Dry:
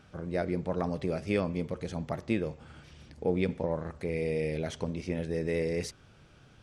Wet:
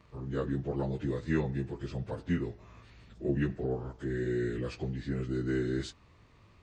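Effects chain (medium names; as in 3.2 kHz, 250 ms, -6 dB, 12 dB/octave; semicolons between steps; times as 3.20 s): frequency-domain pitch shifter -4.5 st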